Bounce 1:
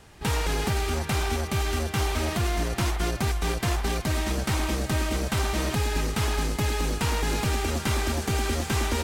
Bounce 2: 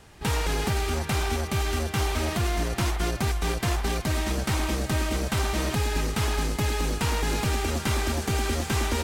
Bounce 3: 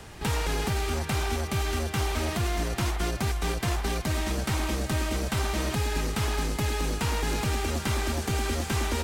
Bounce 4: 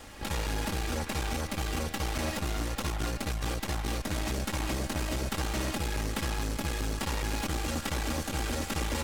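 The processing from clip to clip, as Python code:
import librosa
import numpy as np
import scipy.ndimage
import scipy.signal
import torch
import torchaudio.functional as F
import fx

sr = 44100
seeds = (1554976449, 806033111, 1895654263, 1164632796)

y1 = x
y2 = fx.band_squash(y1, sr, depth_pct=40)
y2 = F.gain(torch.from_numpy(y2), -2.0).numpy()
y3 = fx.lower_of_two(y2, sr, delay_ms=3.6)
y3 = fx.transformer_sat(y3, sr, knee_hz=210.0)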